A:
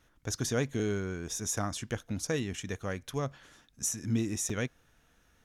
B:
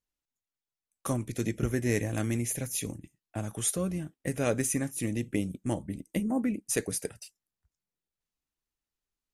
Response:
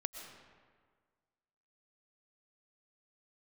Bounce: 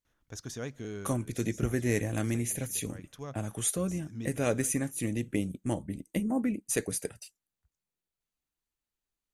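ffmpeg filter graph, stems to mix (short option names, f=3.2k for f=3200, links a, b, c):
-filter_complex "[0:a]adelay=50,volume=-9dB,asplit=2[a][b];[b]volume=-20dB[c];[1:a]bandreject=f=5.3k:w=12,volume=-0.5dB,asplit=2[d][e];[e]apad=whole_len=242232[f];[a][f]sidechaincompress=threshold=-44dB:ratio=3:attack=16:release=242[g];[2:a]atrim=start_sample=2205[h];[c][h]afir=irnorm=-1:irlink=0[i];[g][d][i]amix=inputs=3:normalize=0"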